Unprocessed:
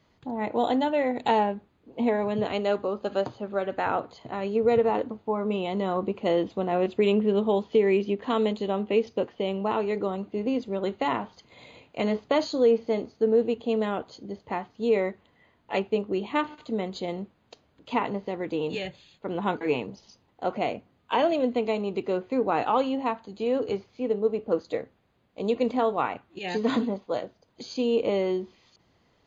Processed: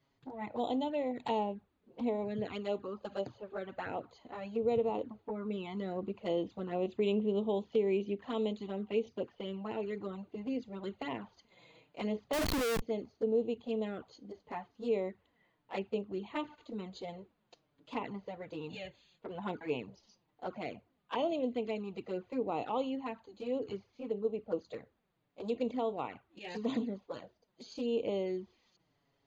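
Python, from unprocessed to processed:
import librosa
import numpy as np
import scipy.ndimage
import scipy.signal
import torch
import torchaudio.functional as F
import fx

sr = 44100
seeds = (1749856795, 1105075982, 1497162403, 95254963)

y = fx.env_flanger(x, sr, rest_ms=7.5, full_db=-21.0)
y = fx.schmitt(y, sr, flips_db=-35.0, at=(12.33, 12.82))
y = y * 10.0 ** (-8.0 / 20.0)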